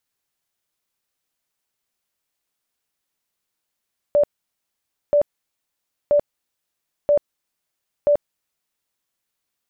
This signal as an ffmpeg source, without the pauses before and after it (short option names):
-f lavfi -i "aevalsrc='0.251*sin(2*PI*584*mod(t,0.98))*lt(mod(t,0.98),50/584)':d=4.9:s=44100"